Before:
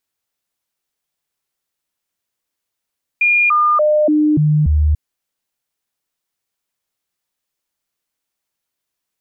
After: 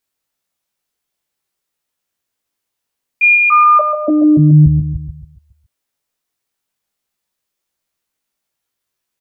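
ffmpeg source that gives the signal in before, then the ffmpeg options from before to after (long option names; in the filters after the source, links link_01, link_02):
-f lavfi -i "aevalsrc='0.316*clip(min(mod(t,0.29),0.29-mod(t,0.29))/0.005,0,1)*sin(2*PI*2420*pow(2,-floor(t/0.29)/1)*mod(t,0.29))':duration=1.74:sample_rate=44100"
-filter_complex "[0:a]asplit=2[link_01][link_02];[link_02]adelay=19,volume=-2.5dB[link_03];[link_01][link_03]amix=inputs=2:normalize=0,asplit=2[link_04][link_05];[link_05]adelay=139,lowpass=frequency=1700:poles=1,volume=-6dB,asplit=2[link_06][link_07];[link_07]adelay=139,lowpass=frequency=1700:poles=1,volume=0.41,asplit=2[link_08][link_09];[link_09]adelay=139,lowpass=frequency=1700:poles=1,volume=0.41,asplit=2[link_10][link_11];[link_11]adelay=139,lowpass=frequency=1700:poles=1,volume=0.41,asplit=2[link_12][link_13];[link_13]adelay=139,lowpass=frequency=1700:poles=1,volume=0.41[link_14];[link_06][link_08][link_10][link_12][link_14]amix=inputs=5:normalize=0[link_15];[link_04][link_15]amix=inputs=2:normalize=0"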